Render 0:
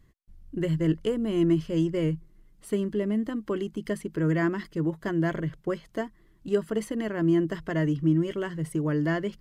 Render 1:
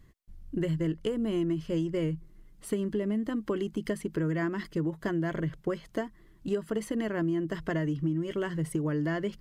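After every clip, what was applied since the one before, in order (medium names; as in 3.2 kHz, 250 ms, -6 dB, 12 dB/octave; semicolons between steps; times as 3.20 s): compression, threshold -29 dBFS, peak gain reduction 11 dB; trim +2.5 dB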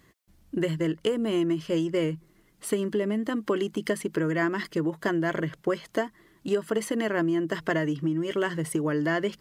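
high-pass 410 Hz 6 dB/octave; trim +8 dB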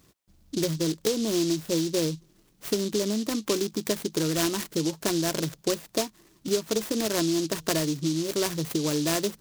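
delay time shaken by noise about 4.8 kHz, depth 0.14 ms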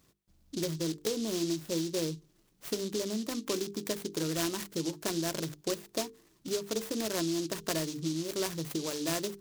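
hum notches 50/100/150/200/250/300/350/400/450 Hz; trim -6 dB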